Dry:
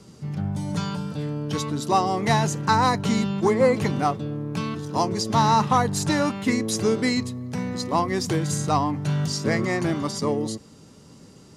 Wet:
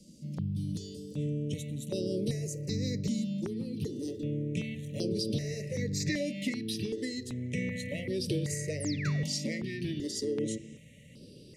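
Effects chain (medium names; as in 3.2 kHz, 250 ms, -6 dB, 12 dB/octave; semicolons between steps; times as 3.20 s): peaking EQ 1.6 kHz -10.5 dB 1.6 oct, from 4.08 s +2 dB, from 6.00 s +13 dB; Chebyshev band-stop 590–1900 Hz, order 5; compression 10:1, threshold -24 dBFS, peak gain reduction 11 dB; 8.80–9.23 s: painted sound fall 390–11000 Hz -37 dBFS; reverberation RT60 0.85 s, pre-delay 3 ms, DRR 15 dB; stepped phaser 2.6 Hz 410–6900 Hz; trim -2.5 dB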